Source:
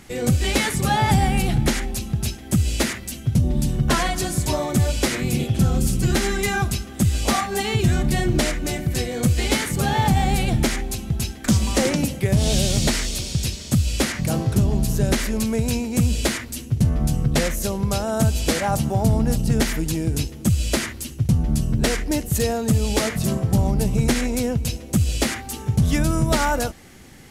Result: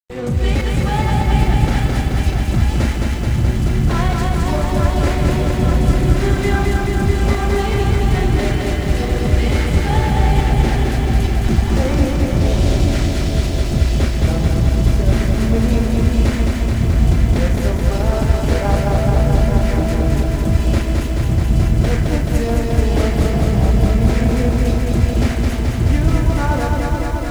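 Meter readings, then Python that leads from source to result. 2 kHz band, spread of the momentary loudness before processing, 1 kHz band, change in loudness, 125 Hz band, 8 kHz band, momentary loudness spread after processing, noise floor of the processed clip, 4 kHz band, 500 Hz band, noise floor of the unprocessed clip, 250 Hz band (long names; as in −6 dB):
+1.5 dB, 5 LU, +3.0 dB, +4.5 dB, +5.5 dB, −6.5 dB, 3 LU, −20 dBFS, −2.0 dB, +4.5 dB, −37 dBFS, +3.5 dB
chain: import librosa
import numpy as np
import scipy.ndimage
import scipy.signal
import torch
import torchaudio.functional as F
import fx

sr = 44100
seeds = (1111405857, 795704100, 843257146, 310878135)

p1 = fx.over_compress(x, sr, threshold_db=-21.0, ratio=-0.5)
p2 = x + (p1 * librosa.db_to_amplitude(-2.5))
p3 = fx.lowpass(p2, sr, hz=1800.0, slope=6)
p4 = fx.low_shelf(p3, sr, hz=78.0, db=9.5)
p5 = fx.hum_notches(p4, sr, base_hz=50, count=4)
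p6 = fx.volume_shaper(p5, sr, bpm=98, per_beat=1, depth_db=-22, release_ms=125.0, shape='fast start')
p7 = fx.doubler(p6, sr, ms=35.0, db=-7.0)
p8 = p7 + fx.echo_feedback(p7, sr, ms=863, feedback_pct=51, wet_db=-7, dry=0)
p9 = np.sign(p8) * np.maximum(np.abs(p8) - 10.0 ** (-28.5 / 20.0), 0.0)
p10 = fx.echo_crushed(p9, sr, ms=215, feedback_pct=80, bits=7, wet_db=-3)
y = p10 * librosa.db_to_amplitude(-3.5)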